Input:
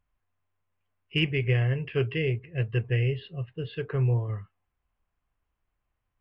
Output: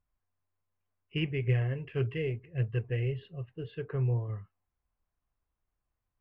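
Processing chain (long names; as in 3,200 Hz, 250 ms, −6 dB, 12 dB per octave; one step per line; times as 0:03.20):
high-shelf EQ 2,600 Hz −10.5 dB
0:01.47–0:03.71: phase shifter 1.7 Hz, delay 4.1 ms, feedback 32%
level −4.5 dB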